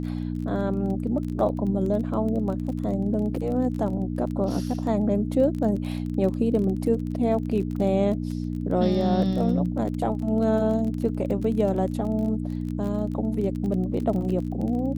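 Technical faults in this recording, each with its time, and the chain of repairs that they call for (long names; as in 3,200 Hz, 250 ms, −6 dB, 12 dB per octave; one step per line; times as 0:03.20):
surface crackle 24 per second −31 dBFS
mains hum 60 Hz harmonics 5 −29 dBFS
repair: click removal
hum removal 60 Hz, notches 5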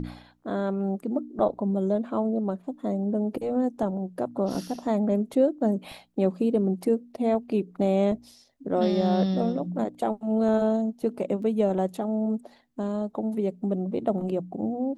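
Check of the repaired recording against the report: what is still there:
none of them is left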